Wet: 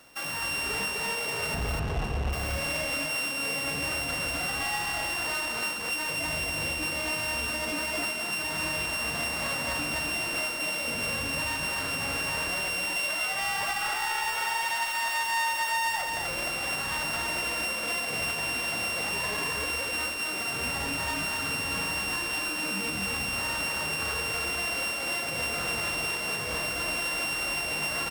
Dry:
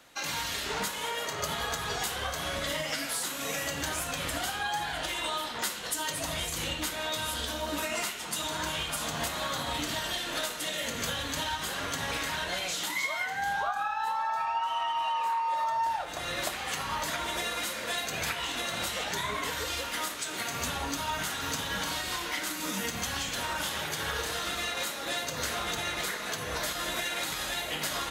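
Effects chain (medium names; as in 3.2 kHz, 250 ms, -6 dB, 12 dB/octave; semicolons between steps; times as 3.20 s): sorted samples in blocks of 16 samples; 1.54–2.33 s: tilt EQ -4.5 dB/octave; saturation -30 dBFS, distortion -12 dB; on a send: delay 254 ms -3.5 dB; on the sum: trim +2.5 dB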